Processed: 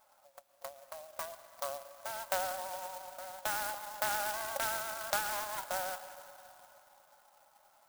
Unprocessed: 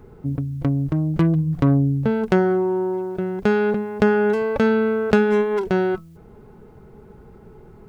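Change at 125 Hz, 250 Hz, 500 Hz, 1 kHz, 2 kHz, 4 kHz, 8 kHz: under -40 dB, -40.0 dB, -22.5 dB, -9.0 dB, -11.0 dB, -2.0 dB, no reading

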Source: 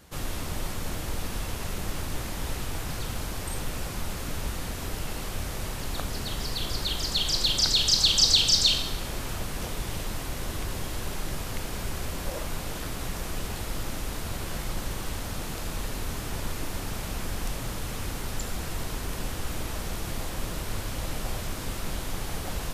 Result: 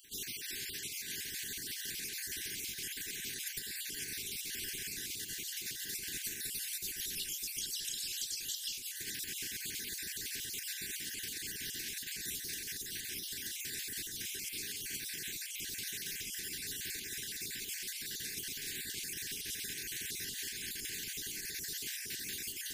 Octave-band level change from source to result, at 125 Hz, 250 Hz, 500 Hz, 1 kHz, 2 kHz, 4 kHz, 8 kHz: -23.5 dB, -16.5 dB, -19.0 dB, under -40 dB, -5.0 dB, -12.5 dB, -4.0 dB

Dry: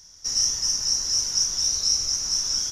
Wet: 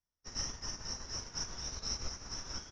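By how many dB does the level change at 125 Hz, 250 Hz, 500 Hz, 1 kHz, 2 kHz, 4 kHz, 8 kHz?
-2.0 dB, -2.0 dB, -2.5 dB, -2.5 dB, -4.5 dB, -18.5 dB, -20.0 dB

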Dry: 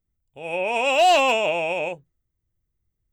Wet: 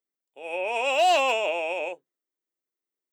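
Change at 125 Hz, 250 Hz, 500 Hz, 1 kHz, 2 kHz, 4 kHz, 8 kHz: under -20 dB, -8.0 dB, -4.0 dB, -4.0 dB, -4.0 dB, -4.0 dB, -4.0 dB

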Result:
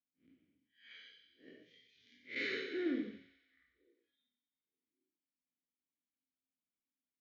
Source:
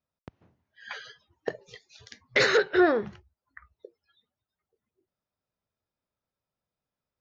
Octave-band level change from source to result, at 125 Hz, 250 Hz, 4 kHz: -19.5 dB, -10.5 dB, -15.0 dB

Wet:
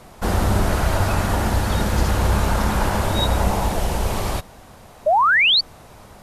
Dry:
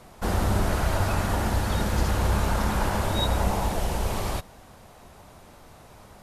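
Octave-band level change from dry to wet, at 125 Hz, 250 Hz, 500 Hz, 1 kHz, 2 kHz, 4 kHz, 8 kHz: +5.0 dB, +5.0 dB, +6.5 dB, +8.0 dB, +12.0 dB, +13.0 dB, +5.0 dB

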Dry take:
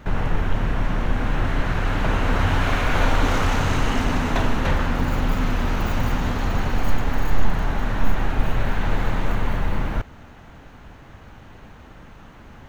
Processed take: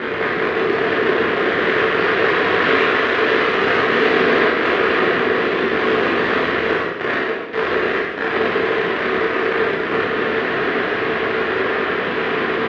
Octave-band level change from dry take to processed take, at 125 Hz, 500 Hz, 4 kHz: -10.0 dB, +14.5 dB, +9.0 dB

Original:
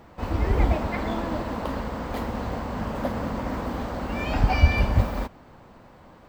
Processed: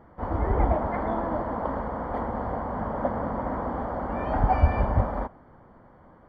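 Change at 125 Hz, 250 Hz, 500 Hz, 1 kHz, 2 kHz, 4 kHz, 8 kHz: -3.0 dB, -2.0 dB, +1.5 dB, +3.0 dB, -6.5 dB, under -15 dB, no reading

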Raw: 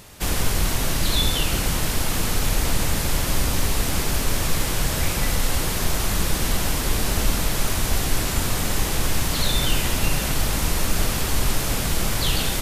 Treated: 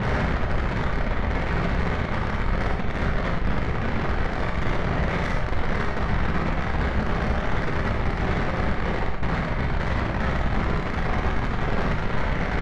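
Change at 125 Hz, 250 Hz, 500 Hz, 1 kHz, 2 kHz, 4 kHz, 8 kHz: 0.0 dB, +1.0 dB, +1.5 dB, +2.0 dB, +0.5 dB, -14.0 dB, under -25 dB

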